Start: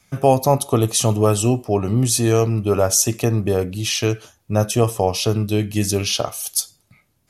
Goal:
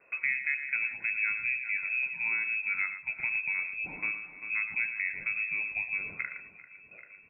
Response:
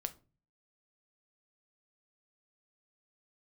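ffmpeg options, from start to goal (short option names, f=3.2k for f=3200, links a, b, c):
-filter_complex "[0:a]asplit=2[a][b];[b]aecho=0:1:393|786|1179:0.133|0.056|0.0235[c];[a][c]amix=inputs=2:normalize=0,acompressor=threshold=-41dB:ratio=2,asplit=2[d][e];[e]aecho=0:1:114:0.316[f];[d][f]amix=inputs=2:normalize=0,lowpass=f=2.3k:t=q:w=0.5098,lowpass=f=2.3k:t=q:w=0.6013,lowpass=f=2.3k:t=q:w=0.9,lowpass=f=2.3k:t=q:w=2.563,afreqshift=-2700"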